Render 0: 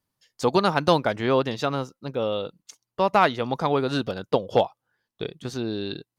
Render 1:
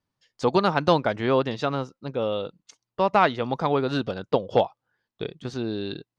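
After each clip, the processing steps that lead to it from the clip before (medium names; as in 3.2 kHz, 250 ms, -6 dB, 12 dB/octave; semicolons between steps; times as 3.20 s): distance through air 85 m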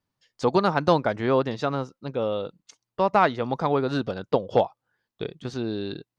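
dynamic bell 3 kHz, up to -5 dB, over -43 dBFS, Q 1.7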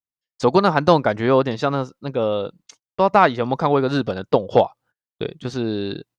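gate -55 dBFS, range -30 dB; trim +5.5 dB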